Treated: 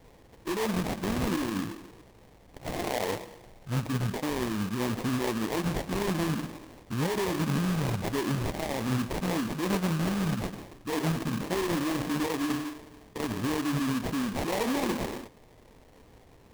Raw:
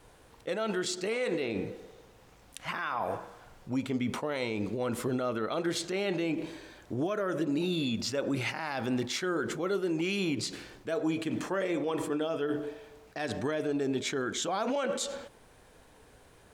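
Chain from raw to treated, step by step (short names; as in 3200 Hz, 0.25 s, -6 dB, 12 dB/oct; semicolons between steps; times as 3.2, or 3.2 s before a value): formant shift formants -6 st; sample-rate reducer 1400 Hz, jitter 20%; gain +2.5 dB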